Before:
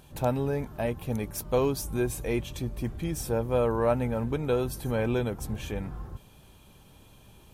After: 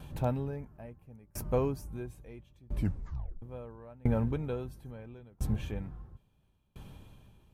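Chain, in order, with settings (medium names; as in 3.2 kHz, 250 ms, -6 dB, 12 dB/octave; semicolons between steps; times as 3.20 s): 0.56–1.91 s: peaking EQ 3.6 kHz -11 dB 0.48 oct; upward compressor, threshold -43 dBFS; tone controls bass +6 dB, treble -7 dB; 2.76 s: tape stop 0.66 s; sawtooth tremolo in dB decaying 0.74 Hz, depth 31 dB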